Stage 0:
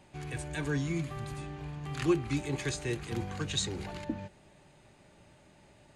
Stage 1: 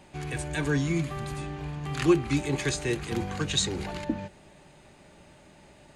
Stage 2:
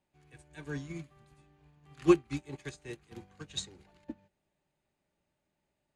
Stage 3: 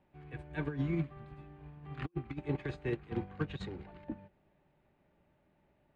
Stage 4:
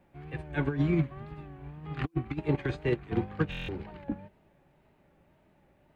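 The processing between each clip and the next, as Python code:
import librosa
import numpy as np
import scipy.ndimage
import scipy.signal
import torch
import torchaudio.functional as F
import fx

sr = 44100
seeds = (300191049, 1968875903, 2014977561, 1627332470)

y1 = fx.peak_eq(x, sr, hz=110.0, db=-8.5, octaves=0.27)
y1 = y1 * 10.0 ** (6.0 / 20.0)
y2 = fx.upward_expand(y1, sr, threshold_db=-35.0, expansion=2.5)
y3 = fx.over_compress(y2, sr, threshold_db=-41.0, ratio=-0.5)
y3 = fx.air_absorb(y3, sr, metres=470.0)
y3 = y3 * 10.0 ** (5.0 / 20.0)
y4 = fx.wow_flutter(y3, sr, seeds[0], rate_hz=2.1, depth_cents=89.0)
y4 = fx.buffer_glitch(y4, sr, at_s=(3.5,), block=1024, repeats=7)
y4 = y4 * 10.0 ** (7.0 / 20.0)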